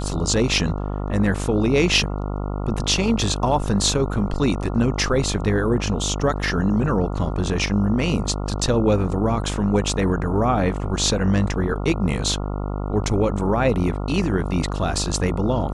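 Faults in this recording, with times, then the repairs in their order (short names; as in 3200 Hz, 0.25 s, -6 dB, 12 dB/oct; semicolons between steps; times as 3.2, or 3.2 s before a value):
buzz 50 Hz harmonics 28 -26 dBFS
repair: de-hum 50 Hz, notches 28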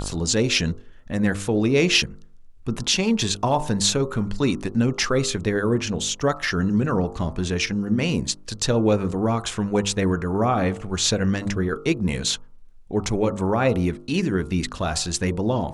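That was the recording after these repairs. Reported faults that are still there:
none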